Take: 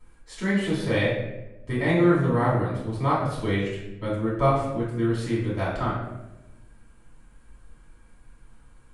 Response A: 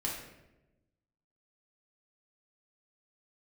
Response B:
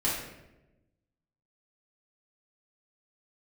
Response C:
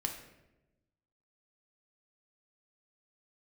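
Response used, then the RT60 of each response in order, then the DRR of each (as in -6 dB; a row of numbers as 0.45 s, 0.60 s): B; 1.0 s, 1.0 s, 1.0 s; -4.5 dB, -9.0 dB, 2.5 dB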